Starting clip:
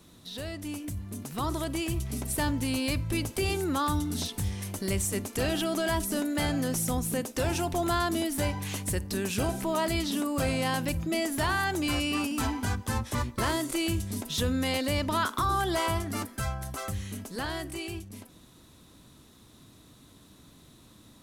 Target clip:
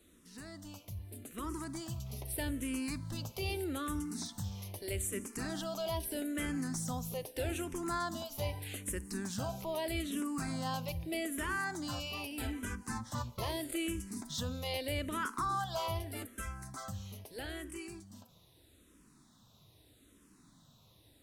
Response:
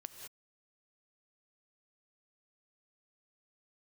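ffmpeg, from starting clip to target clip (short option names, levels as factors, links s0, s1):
-filter_complex "[0:a]asplit=2[s0][s1];[1:a]atrim=start_sample=2205,highshelf=f=5100:g=9.5[s2];[s1][s2]afir=irnorm=-1:irlink=0,volume=0.224[s3];[s0][s3]amix=inputs=2:normalize=0,asplit=2[s4][s5];[s5]afreqshift=-0.8[s6];[s4][s6]amix=inputs=2:normalize=1,volume=0.447"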